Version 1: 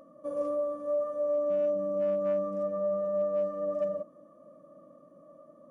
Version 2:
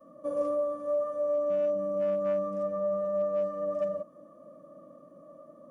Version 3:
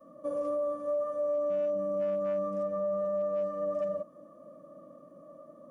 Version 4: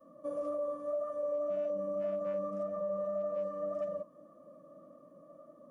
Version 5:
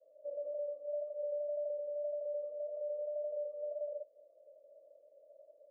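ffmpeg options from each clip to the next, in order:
-af "adynamicequalizer=threshold=0.00631:dfrequency=350:dqfactor=0.76:tfrequency=350:tqfactor=0.76:attack=5:release=100:ratio=0.375:range=2.5:mode=cutabove:tftype=bell,volume=3dB"
-af "alimiter=level_in=1dB:limit=-24dB:level=0:latency=1:release=82,volume=-1dB"
-af "flanger=delay=2.1:depth=5.5:regen=-70:speed=1.8:shape=triangular"
-af "asuperpass=centerf=540:order=8:qfactor=1.8,volume=-3.5dB"

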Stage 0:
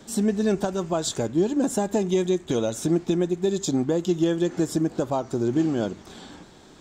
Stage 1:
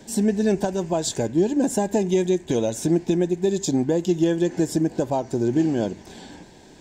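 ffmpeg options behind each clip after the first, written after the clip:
-af "superequalizer=10b=0.282:13b=0.708,volume=2dB"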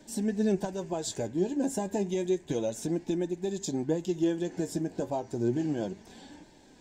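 -af "flanger=delay=3.3:depth=7.8:regen=54:speed=0.31:shape=sinusoidal,volume=-4.5dB"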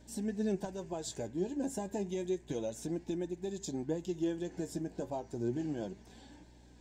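-af "aeval=exprs='val(0)+0.00251*(sin(2*PI*60*n/s)+sin(2*PI*2*60*n/s)/2+sin(2*PI*3*60*n/s)/3+sin(2*PI*4*60*n/s)/4+sin(2*PI*5*60*n/s)/5)':c=same,volume=-6.5dB"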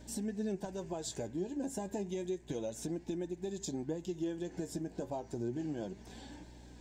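-af "acompressor=threshold=-45dB:ratio=2,volume=5dB"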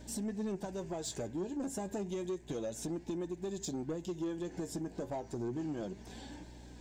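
-af "asoftclip=type=tanh:threshold=-32.5dB,volume=2dB"

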